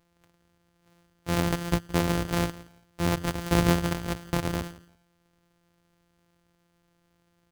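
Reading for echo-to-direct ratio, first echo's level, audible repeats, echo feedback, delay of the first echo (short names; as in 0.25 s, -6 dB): -19.5 dB, -19.5 dB, 2, 21%, 0.169 s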